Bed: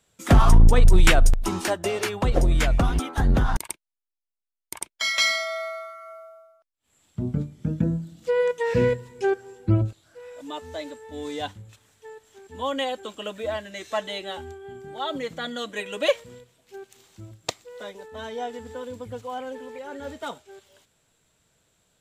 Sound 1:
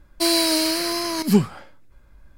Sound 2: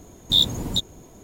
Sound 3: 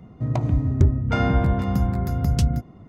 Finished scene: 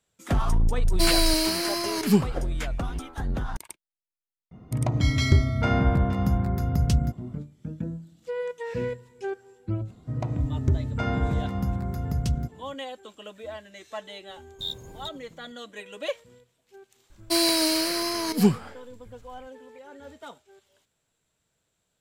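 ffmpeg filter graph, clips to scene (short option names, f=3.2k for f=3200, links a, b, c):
-filter_complex "[1:a]asplit=2[a][b];[3:a]asplit=2[c][d];[0:a]volume=-9dB[e];[2:a]aecho=1:1:1.9:0.45[f];[a]atrim=end=2.37,asetpts=PTS-STARTPTS,volume=-3.5dB,afade=t=in:d=0.004:c=hsin,afade=t=out:st=2.366:d=0.004:c=hsin,adelay=790[g];[c]atrim=end=2.88,asetpts=PTS-STARTPTS,volume=-2dB,afade=t=in:d=0.004:c=hsin,afade=t=out:st=2.876:d=0.004:c=hsin,adelay=4510[h];[d]atrim=end=2.88,asetpts=PTS-STARTPTS,volume=-6dB,afade=t=in:d=0.004:c=hsin,afade=t=out:st=2.876:d=0.004:c=hsin,adelay=9870[i];[f]atrim=end=1.23,asetpts=PTS-STARTPTS,volume=-17dB,afade=t=in:d=0.004:c=hsin,afade=t=out:st=1.226:d=0.004:c=hsin,adelay=14290[j];[b]atrim=end=2.37,asetpts=PTS-STARTPTS,volume=-3dB,afade=t=in:d=0.004:c=hsin,afade=t=out:st=2.366:d=0.004:c=hsin,adelay=17100[k];[e][g][h][i][j][k]amix=inputs=6:normalize=0"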